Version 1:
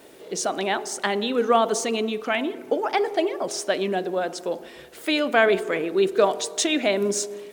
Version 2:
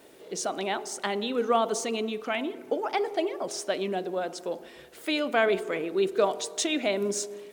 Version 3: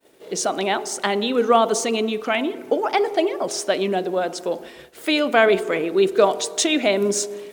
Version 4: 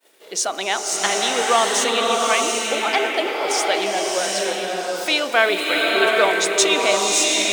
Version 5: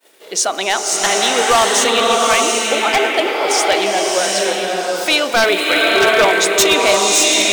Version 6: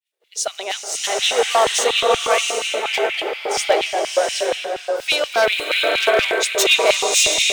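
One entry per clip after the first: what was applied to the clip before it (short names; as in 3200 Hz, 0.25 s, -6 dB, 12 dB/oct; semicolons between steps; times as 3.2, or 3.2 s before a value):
dynamic EQ 1700 Hz, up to -5 dB, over -47 dBFS, Q 7.9; gain -5 dB
expander -45 dBFS; gain +8 dB
HPF 1300 Hz 6 dB/oct; bloom reverb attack 0.76 s, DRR -1.5 dB; gain +4 dB
wavefolder -10.5 dBFS; gain +5.5 dB
LFO high-pass square 4.2 Hz 490–2600 Hz; three-band expander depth 70%; gain -6.5 dB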